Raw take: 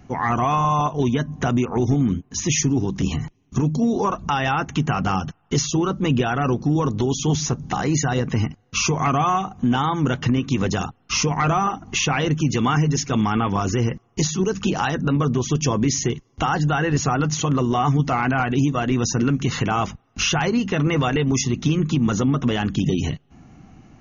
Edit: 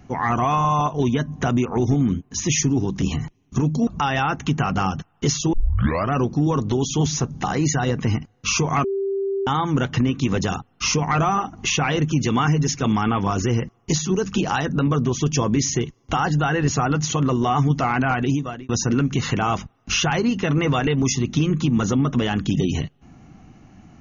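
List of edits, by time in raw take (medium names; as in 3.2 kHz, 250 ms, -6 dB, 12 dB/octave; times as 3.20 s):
3.87–4.16 s: delete
5.82 s: tape start 0.59 s
9.13–9.76 s: bleep 392 Hz -20.5 dBFS
18.52–18.98 s: fade out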